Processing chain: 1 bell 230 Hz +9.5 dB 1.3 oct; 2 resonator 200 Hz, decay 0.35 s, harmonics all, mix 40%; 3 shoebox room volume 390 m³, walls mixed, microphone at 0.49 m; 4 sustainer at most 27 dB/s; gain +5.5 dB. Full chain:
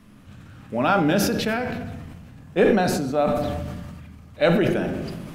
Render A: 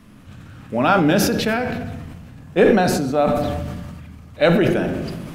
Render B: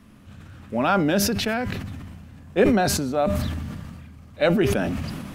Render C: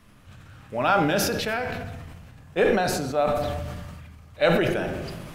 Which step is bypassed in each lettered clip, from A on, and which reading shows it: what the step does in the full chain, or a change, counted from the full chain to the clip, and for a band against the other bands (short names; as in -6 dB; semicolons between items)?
2, loudness change +3.5 LU; 3, 8 kHz band +5.5 dB; 1, 250 Hz band -5.5 dB